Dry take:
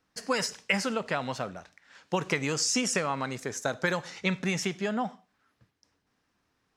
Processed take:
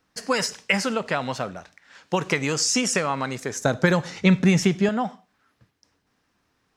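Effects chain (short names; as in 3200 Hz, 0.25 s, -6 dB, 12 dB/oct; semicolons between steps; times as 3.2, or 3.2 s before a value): 3.61–4.89 low shelf 340 Hz +11 dB; gain +5 dB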